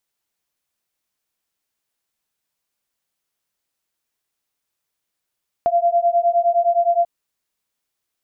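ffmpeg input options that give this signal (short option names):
-f lavfi -i "aevalsrc='0.141*(sin(2*PI*684*t)+sin(2*PI*693.7*t))':d=1.39:s=44100"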